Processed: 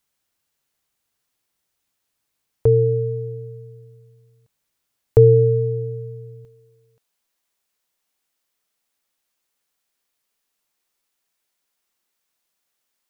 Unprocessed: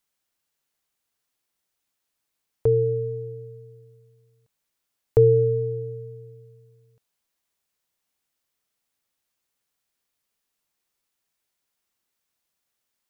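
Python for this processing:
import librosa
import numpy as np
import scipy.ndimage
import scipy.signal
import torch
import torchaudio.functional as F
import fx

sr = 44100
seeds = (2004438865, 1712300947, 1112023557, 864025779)

y = fx.peak_eq(x, sr, hz=84.0, db=fx.steps((0.0, 4.0), (6.45, -7.5)), octaves=2.2)
y = y * 10.0 ** (3.5 / 20.0)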